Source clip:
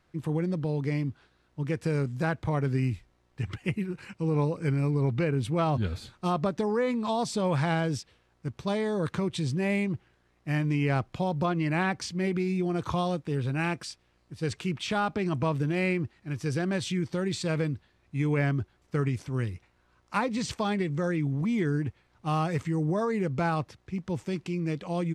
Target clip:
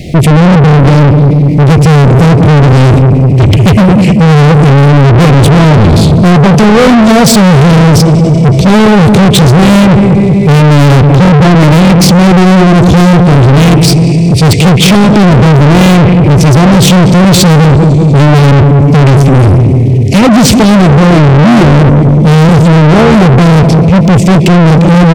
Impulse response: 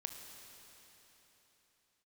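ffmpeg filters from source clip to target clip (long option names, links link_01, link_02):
-filter_complex "[0:a]equalizer=frequency=160:width=0.75:gain=9.5,asplit=2[link_01][link_02];[link_02]adelay=192,lowpass=frequency=930:poles=1,volume=-11.5dB,asplit=2[link_03][link_04];[link_04]adelay=192,lowpass=frequency=930:poles=1,volume=0.51,asplit=2[link_05][link_06];[link_06]adelay=192,lowpass=frequency=930:poles=1,volume=0.51,asplit=2[link_07][link_08];[link_08]adelay=192,lowpass=frequency=930:poles=1,volume=0.51,asplit=2[link_09][link_10];[link_10]adelay=192,lowpass=frequency=930:poles=1,volume=0.51[link_11];[link_01][link_03][link_05][link_07][link_09][link_11]amix=inputs=6:normalize=0,asplit=2[link_12][link_13];[1:a]atrim=start_sample=2205[link_14];[link_13][link_14]afir=irnorm=-1:irlink=0,volume=-9dB[link_15];[link_12][link_15]amix=inputs=2:normalize=0,acontrast=74,asuperstop=centerf=1200:order=12:qfactor=0.92,asoftclip=type=tanh:threshold=-29.5dB,alimiter=level_in=35.5dB:limit=-1dB:release=50:level=0:latency=1,volume=-1dB"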